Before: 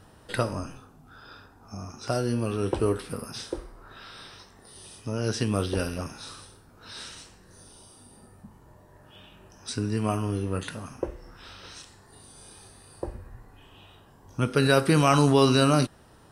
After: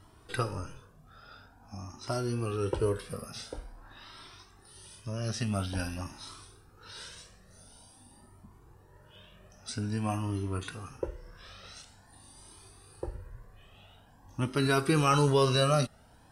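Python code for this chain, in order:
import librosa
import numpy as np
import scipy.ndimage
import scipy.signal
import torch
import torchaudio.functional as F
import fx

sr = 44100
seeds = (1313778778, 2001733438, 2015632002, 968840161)

y = fx.peak_eq(x, sr, hz=470.0, db=-12.5, octaves=0.24, at=(4.32, 6.11))
y = fx.comb_cascade(y, sr, direction='rising', hz=0.48)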